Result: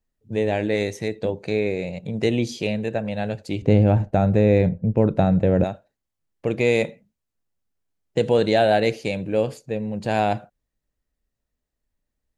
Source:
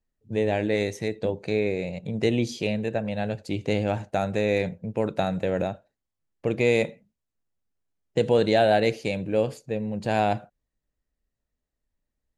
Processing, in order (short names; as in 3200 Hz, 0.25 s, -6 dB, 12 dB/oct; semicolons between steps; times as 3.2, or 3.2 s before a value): 3.62–5.64 tilt -3.5 dB/oct; gain +2 dB